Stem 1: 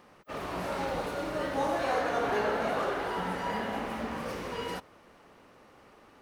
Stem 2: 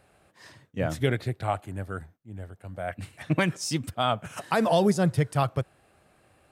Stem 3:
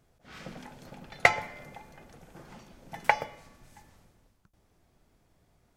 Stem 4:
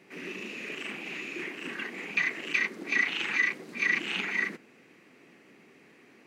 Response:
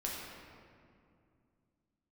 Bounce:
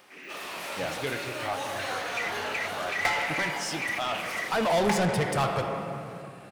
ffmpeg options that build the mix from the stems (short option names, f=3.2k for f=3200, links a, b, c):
-filter_complex "[0:a]equalizer=f=3.3k:t=o:w=0.33:g=4,crystalizer=i=4:c=0,volume=-18.5dB[a];[1:a]volume=-6dB,afade=t=in:st=4.39:d=0.36:silence=0.281838,asplit=2[b][c];[c]volume=-7.5dB[d];[2:a]adelay=1800,volume=-9dB,asplit=2[e][f];[f]volume=-9dB[g];[3:a]volume=-18.5dB[h];[4:a]atrim=start_sample=2205[i];[d][g]amix=inputs=2:normalize=0[j];[j][i]afir=irnorm=-1:irlink=0[k];[a][b][e][h][k]amix=inputs=5:normalize=0,asplit=2[l][m];[m]highpass=f=720:p=1,volume=22dB,asoftclip=type=tanh:threshold=-19dB[n];[l][n]amix=inputs=2:normalize=0,lowpass=f=6.5k:p=1,volume=-6dB"